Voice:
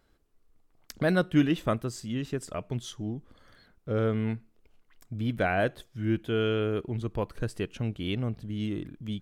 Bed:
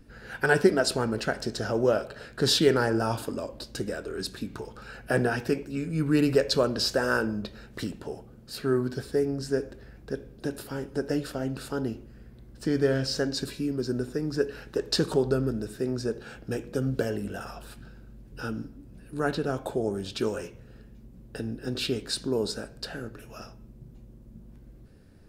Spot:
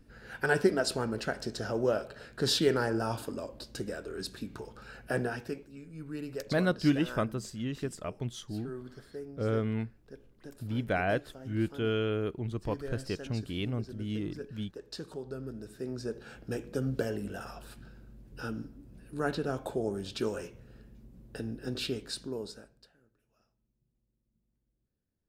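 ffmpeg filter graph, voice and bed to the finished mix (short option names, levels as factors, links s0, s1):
-filter_complex "[0:a]adelay=5500,volume=0.708[s0];[1:a]volume=2.37,afade=t=out:st=5.01:d=0.75:silence=0.266073,afade=t=in:st=15.25:d=1.26:silence=0.237137,afade=t=out:st=21.71:d=1.21:silence=0.0446684[s1];[s0][s1]amix=inputs=2:normalize=0"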